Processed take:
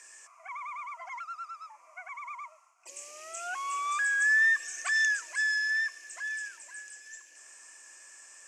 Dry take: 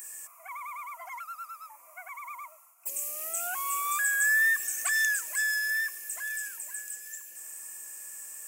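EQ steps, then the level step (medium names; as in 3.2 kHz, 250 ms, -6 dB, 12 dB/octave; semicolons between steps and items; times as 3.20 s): elliptic band-pass 270–6100 Hz, stop band 60 dB; bass shelf 390 Hz -6.5 dB; +1.0 dB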